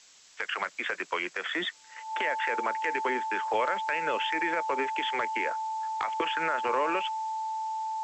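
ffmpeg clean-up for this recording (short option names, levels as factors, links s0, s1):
-af "bandreject=f=880:w=30,afftdn=nr=26:nf=-51"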